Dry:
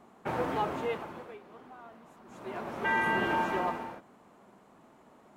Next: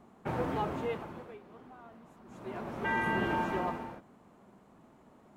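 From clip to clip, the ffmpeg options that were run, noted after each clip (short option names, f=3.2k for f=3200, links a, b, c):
-af "lowshelf=f=240:g=10,volume=-4dB"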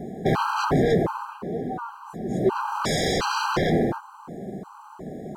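-af "aeval=exprs='0.112*sin(PI/2*6.31*val(0)/0.112)':c=same,equalizer=f=160:t=o:w=0.67:g=8,equalizer=f=400:t=o:w=0.67:g=7,equalizer=f=1k:t=o:w=0.67:g=4,equalizer=f=2.5k:t=o:w=0.67:g=-9,afftfilt=real='re*gt(sin(2*PI*1.4*pts/sr)*(1-2*mod(floor(b*sr/1024/800),2)),0)':imag='im*gt(sin(2*PI*1.4*pts/sr)*(1-2*mod(floor(b*sr/1024/800),2)),0)':win_size=1024:overlap=0.75"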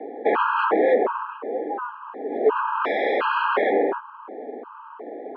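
-af "highpass=f=280:t=q:w=0.5412,highpass=f=280:t=q:w=1.307,lowpass=f=2.8k:t=q:w=0.5176,lowpass=f=2.8k:t=q:w=0.7071,lowpass=f=2.8k:t=q:w=1.932,afreqshift=54,volume=3.5dB"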